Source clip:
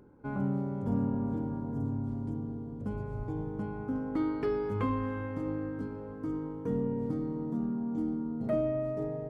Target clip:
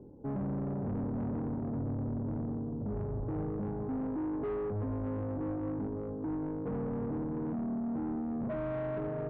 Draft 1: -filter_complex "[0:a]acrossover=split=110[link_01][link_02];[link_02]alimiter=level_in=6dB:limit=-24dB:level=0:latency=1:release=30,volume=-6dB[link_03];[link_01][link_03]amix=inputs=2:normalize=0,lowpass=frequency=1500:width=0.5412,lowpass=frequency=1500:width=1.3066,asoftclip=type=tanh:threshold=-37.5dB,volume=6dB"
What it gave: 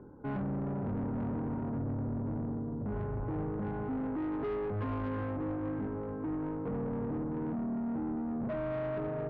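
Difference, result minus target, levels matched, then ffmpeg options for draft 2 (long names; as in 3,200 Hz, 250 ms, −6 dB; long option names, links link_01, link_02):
2,000 Hz band +5.0 dB
-filter_complex "[0:a]acrossover=split=110[link_01][link_02];[link_02]alimiter=level_in=6dB:limit=-24dB:level=0:latency=1:release=30,volume=-6dB[link_03];[link_01][link_03]amix=inputs=2:normalize=0,lowpass=frequency=730:width=0.5412,lowpass=frequency=730:width=1.3066,asoftclip=type=tanh:threshold=-37.5dB,volume=6dB"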